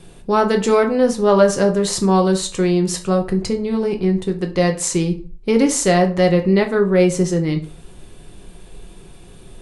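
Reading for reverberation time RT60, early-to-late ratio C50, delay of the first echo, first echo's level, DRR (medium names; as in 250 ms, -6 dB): 0.40 s, 13.0 dB, no echo, no echo, 4.0 dB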